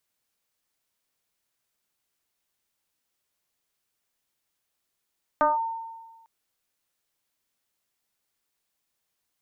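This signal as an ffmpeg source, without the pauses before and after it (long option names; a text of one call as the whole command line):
ffmpeg -f lavfi -i "aevalsrc='0.158*pow(10,-3*t/1.35)*sin(2*PI*908*t+1.5*clip(1-t/0.17,0,1)*sin(2*PI*0.34*908*t))':duration=0.85:sample_rate=44100" out.wav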